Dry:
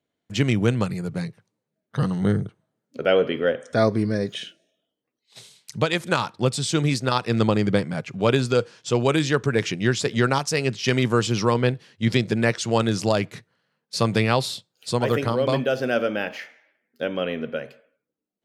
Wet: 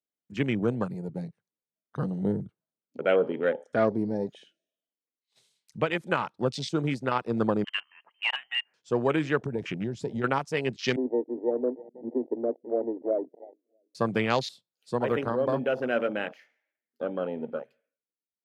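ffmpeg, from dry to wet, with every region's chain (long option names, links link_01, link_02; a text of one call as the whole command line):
ffmpeg -i in.wav -filter_complex "[0:a]asettb=1/sr,asplit=3[link_01][link_02][link_03];[link_01]atrim=end=7.644[link_04];[link_02]atrim=start=7.64:end=8.74,asetpts=PTS-STARTPTS,afade=type=in:duration=0.004:curve=qsin,afade=type=out:start_time=1.096:duration=0.004:curve=qsin,highpass=620,lowpass=frequency=2800:width_type=q:width=0.5098,lowpass=frequency=2800:width_type=q:width=0.6013,lowpass=frequency=2800:width_type=q:width=0.9,lowpass=frequency=2800:width_type=q:width=2.563,afreqshift=-3300[link_05];[link_03]atrim=start=8.736[link_06];[link_04][link_05]acrossfade=duration=0.004:curve1=hsin:curve2=qsin[link_07];[link_07][link_06]acrossfade=duration=0.004:curve1=qsin:curve2=hsin,asettb=1/sr,asplit=3[link_08][link_09][link_10];[link_08]atrim=end=9.434[link_11];[link_09]atrim=start=9.43:end=10.24,asetpts=PTS-STARTPTS,afade=type=in:duration=0.004:curve=qsin,afade=type=out:start_time=0.806:duration=0.004:curve=qsin,lowshelf=frequency=150:gain=10,acompressor=threshold=-20dB:ratio=4:attack=3.2:release=140:knee=1:detection=peak[link_12];[link_10]atrim=start=10.236[link_13];[link_11][link_12]acrossfade=duration=0.004:curve1=hsin:curve2=qsin[link_14];[link_14][link_13]acrossfade=duration=0.004:curve1=qsin:curve2=hsin,asettb=1/sr,asplit=3[link_15][link_16][link_17];[link_15]atrim=end=10.964[link_18];[link_16]atrim=start=10.96:end=13.95,asetpts=PTS-STARTPTS,afade=type=in:duration=0.004:curve=qsin,afade=type=out:start_time=2.986:duration=0.004:curve=qsin,asuperpass=centerf=410:order=20:qfactor=0.91,aecho=1:1:322|644|966:0.112|0.0449|0.018,atrim=end_sample=131859[link_19];[link_17]atrim=start=13.946[link_20];[link_18][link_19]acrossfade=duration=0.004:curve1=hsin:curve2=qsin[link_21];[link_21][link_20]acrossfade=duration=0.004:curve1=qsin:curve2=hsin,highpass=170,afwtdn=0.0316,volume=-4dB" out.wav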